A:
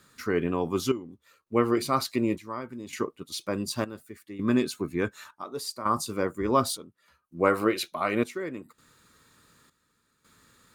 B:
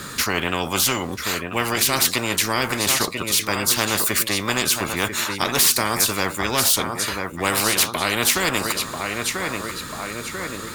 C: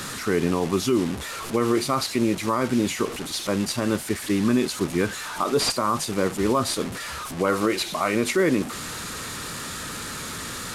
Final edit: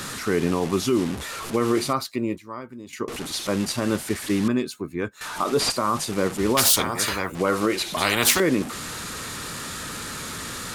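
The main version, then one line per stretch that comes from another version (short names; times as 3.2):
C
1.93–3.08 from A
4.48–5.21 from A
6.57–7.35 from B
7.97–8.4 from B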